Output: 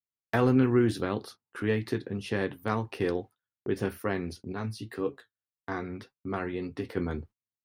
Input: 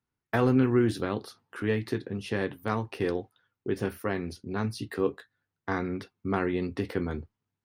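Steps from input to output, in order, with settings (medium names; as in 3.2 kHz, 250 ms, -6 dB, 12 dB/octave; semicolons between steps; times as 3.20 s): gate -47 dBFS, range -22 dB; 4.52–6.97 s: flange 1.8 Hz, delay 6.2 ms, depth 4 ms, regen +55%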